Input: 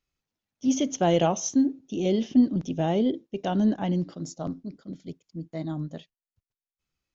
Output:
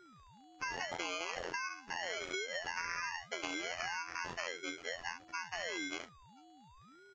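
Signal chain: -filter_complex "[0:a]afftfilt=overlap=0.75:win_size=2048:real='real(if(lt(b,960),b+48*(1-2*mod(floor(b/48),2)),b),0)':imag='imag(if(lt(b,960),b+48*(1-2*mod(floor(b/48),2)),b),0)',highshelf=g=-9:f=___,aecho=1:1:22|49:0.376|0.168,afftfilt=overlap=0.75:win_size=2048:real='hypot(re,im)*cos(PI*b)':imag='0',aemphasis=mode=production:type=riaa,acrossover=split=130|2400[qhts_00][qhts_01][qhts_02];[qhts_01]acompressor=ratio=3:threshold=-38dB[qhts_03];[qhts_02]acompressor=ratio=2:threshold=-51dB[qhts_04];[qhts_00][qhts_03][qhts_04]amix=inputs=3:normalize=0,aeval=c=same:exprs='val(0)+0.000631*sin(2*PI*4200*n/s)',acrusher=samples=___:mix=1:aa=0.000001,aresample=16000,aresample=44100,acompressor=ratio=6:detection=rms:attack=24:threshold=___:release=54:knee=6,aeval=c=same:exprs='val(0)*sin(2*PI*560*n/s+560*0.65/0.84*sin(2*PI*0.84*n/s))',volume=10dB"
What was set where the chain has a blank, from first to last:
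4800, 12, -47dB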